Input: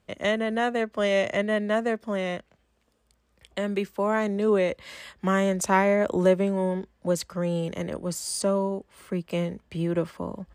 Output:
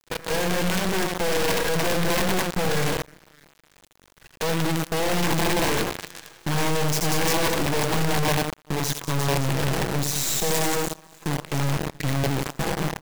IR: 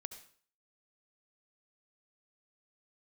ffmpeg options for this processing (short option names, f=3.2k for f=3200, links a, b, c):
-filter_complex "[0:a]bandreject=f=106.4:t=h:w=4,bandreject=f=212.8:t=h:w=4,bandreject=f=319.2:t=h:w=4,asetrate=35721,aresample=44100,agate=range=-23dB:threshold=-48dB:ratio=16:detection=peak,aecho=1:1:6.1:0.92,asplit=2[a][b];[b]acompressor=threshold=-26dB:ratio=6,volume=2dB[c];[a][c]amix=inputs=2:normalize=0,aeval=exprs='(tanh(22.4*val(0)+0.7)-tanh(0.7))/22.4':c=same,acompressor=mode=upward:threshold=-30dB:ratio=2.5,asplit=2[d][e];[e]aecho=0:1:80|192|348.8|568.3|875.6:0.631|0.398|0.251|0.158|0.1[f];[d][f]amix=inputs=2:normalize=0,adynamicequalizer=threshold=0.00501:dfrequency=2700:dqfactor=0.95:tfrequency=2700:tqfactor=0.95:attack=5:release=100:ratio=0.375:range=2:mode=cutabove:tftype=bell,aeval=exprs='(mod(6.68*val(0)+1,2)-1)/6.68':c=same,asuperstop=centerf=1300:order=20:qfactor=4.3,acrusher=bits=5:dc=4:mix=0:aa=0.000001"